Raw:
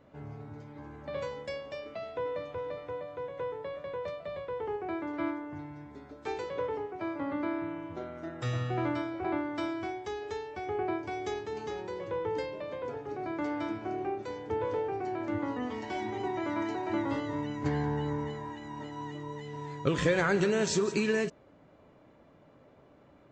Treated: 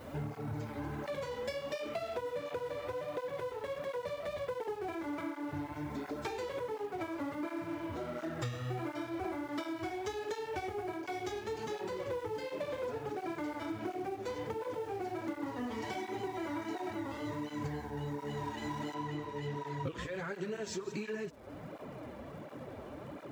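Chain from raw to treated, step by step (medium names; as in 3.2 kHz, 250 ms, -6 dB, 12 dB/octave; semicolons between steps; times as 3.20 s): companding laws mixed up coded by mu; treble shelf 5.3 kHz +6.5 dB, from 18.94 s -5.5 dB; compression 12:1, threshold -41 dBFS, peak gain reduction 20 dB; crackle 200 per s -60 dBFS; cancelling through-zero flanger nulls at 1.4 Hz, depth 7.5 ms; trim +8 dB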